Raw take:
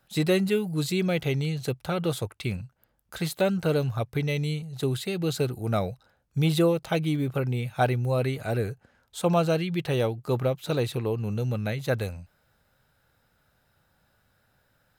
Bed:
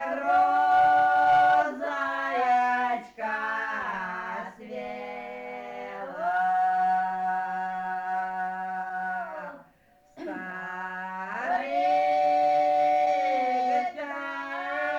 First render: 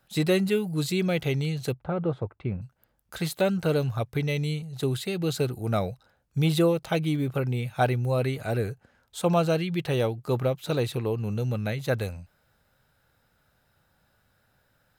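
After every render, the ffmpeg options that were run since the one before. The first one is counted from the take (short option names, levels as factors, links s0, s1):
-filter_complex "[0:a]asettb=1/sr,asplit=3[s0][s1][s2];[s0]atrim=end=1.724[s3];[s1]atrim=start=1.72:end=2.62,asetpts=PTS-STARTPTS,afade=t=in:d=0.004:c=qsin,afade=t=out:st=0.896:d=0.004:c=qsin,lowpass=1200[s4];[s2]atrim=start=2.616[s5];[s3][s4]acrossfade=d=0.004:c1=hsin:c2=qsin[s6];[s6][s5]acrossfade=d=0.004:c1=qsin:c2=hsin"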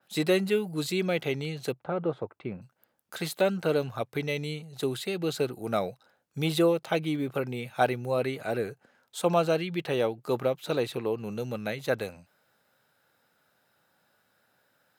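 -af "highpass=230,adynamicequalizer=threshold=0.00447:dfrequency=4100:dqfactor=0.7:tfrequency=4100:tqfactor=0.7:attack=5:release=100:ratio=0.375:range=3:mode=cutabove:tftype=highshelf"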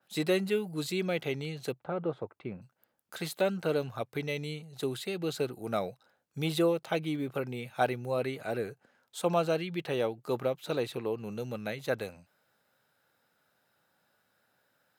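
-af "volume=0.668"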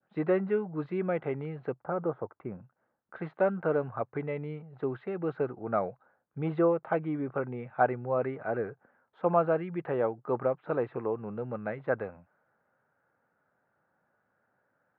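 -af "adynamicequalizer=threshold=0.00562:dfrequency=1100:dqfactor=0.75:tfrequency=1100:tqfactor=0.75:attack=5:release=100:ratio=0.375:range=2.5:mode=boostabove:tftype=bell,lowpass=f=1700:w=0.5412,lowpass=f=1700:w=1.3066"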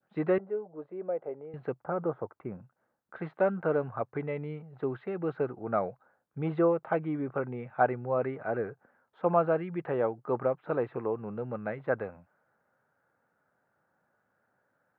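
-filter_complex "[0:a]asettb=1/sr,asplit=3[s0][s1][s2];[s0]atrim=end=0.384[s3];[s1]atrim=start=0.38:end=1.54,asetpts=PTS-STARTPTS,afade=t=in:d=0.004:c=qsin,afade=t=out:st=1.156:d=0.004:c=qsin,bandpass=f=550:t=q:w=2.4[s4];[s2]atrim=start=1.536[s5];[s3][s4]acrossfade=d=0.004:c1=hsin:c2=qsin[s6];[s6][s5]acrossfade=d=0.004:c1=qsin:c2=hsin"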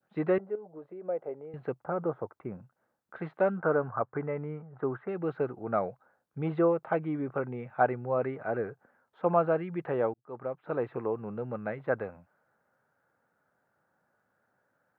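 -filter_complex "[0:a]asettb=1/sr,asplit=3[s0][s1][s2];[s0]atrim=end=0.554[s3];[s1]atrim=start=0.55:end=1.08,asetpts=PTS-STARTPTS,afade=t=in:d=0.004:c=qsin,afade=t=out:st=0.526:d=0.004:c=qsin,acompressor=threshold=0.0112:ratio=6:attack=3.2:release=140:knee=1:detection=peak[s4];[s2]atrim=start=1.076[s5];[s3][s4]acrossfade=d=0.004:c1=hsin:c2=qsin[s6];[s6][s5]acrossfade=d=0.004:c1=qsin:c2=hsin,asettb=1/sr,asplit=3[s7][s8][s9];[s7]atrim=end=3.594[s10];[s8]atrim=start=3.59:end=5.09,asetpts=PTS-STARTPTS,afade=t=in:d=0.004:c=qsin,afade=t=out:st=1.496:d=0.004:c=qsin,lowpass=f=1400:t=q:w=1.9[s11];[s9]atrim=start=5.086[s12];[s10][s11]acrossfade=d=0.004:c1=hsin:c2=qsin[s13];[s13][s12]acrossfade=d=0.004:c1=qsin:c2=hsin,asplit=2[s14][s15];[s14]atrim=end=10.14,asetpts=PTS-STARTPTS,afade=t=out:st=10.136:d=0.004:c=hsin[s16];[s15]atrim=start=10.14,asetpts=PTS-STARTPTS,afade=t=in:d=0.75[s17];[s16][s17]concat=n=2:v=0:a=1"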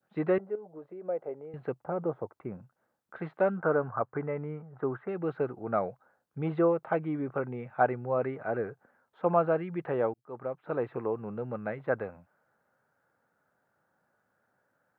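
-filter_complex "[0:a]asettb=1/sr,asplit=3[s0][s1][s2];[s0]atrim=end=1.794[s3];[s1]atrim=start=1.79:end=2.36,asetpts=PTS-STARTPTS,afade=t=in:d=0.004:c=qsin,afade=t=out:st=0.566:d=0.004:c=qsin,equalizer=f=1400:w=2:g=-5.5[s4];[s2]atrim=start=2.356[s5];[s3][s4]acrossfade=d=0.004:c1=hsin:c2=qsin[s6];[s6][s5]acrossfade=d=0.004:c1=qsin:c2=hsin"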